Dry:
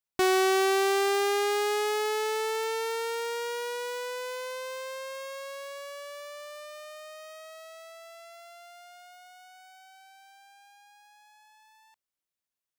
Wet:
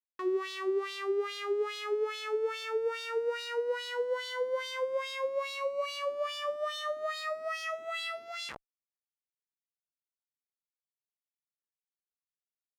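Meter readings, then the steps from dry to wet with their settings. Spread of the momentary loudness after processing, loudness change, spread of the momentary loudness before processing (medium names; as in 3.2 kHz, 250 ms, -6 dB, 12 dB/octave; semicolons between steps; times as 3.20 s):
3 LU, -5.0 dB, 22 LU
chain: Schmitt trigger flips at -45 dBFS; LFO band-pass sine 2.4 Hz 300–3800 Hz; trim +6.5 dB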